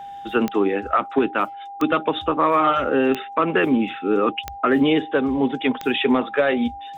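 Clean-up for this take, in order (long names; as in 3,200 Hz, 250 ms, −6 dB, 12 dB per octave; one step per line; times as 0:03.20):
click removal
notch filter 800 Hz, Q 30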